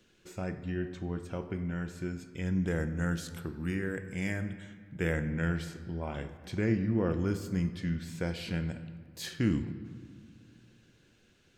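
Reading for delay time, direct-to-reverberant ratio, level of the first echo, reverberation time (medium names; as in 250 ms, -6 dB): no echo, 10.0 dB, no echo, 2.0 s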